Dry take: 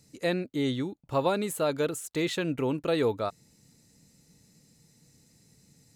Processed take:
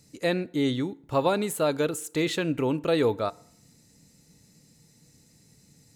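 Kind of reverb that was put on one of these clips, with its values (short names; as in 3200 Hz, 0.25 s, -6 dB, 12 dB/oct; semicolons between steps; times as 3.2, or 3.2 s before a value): FDN reverb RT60 0.66 s, low-frequency decay 0.95×, high-frequency decay 0.75×, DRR 19 dB; gain +2.5 dB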